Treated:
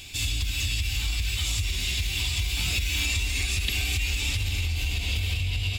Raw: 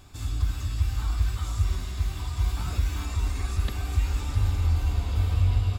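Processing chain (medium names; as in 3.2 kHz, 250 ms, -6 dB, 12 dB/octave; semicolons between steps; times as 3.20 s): peak limiter -17.5 dBFS, peak gain reduction 5 dB; compression, threshold -26 dBFS, peak gain reduction 6 dB; resonant high shelf 1.8 kHz +12.5 dB, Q 3; saturation -17 dBFS, distortion -27 dB; trim +2 dB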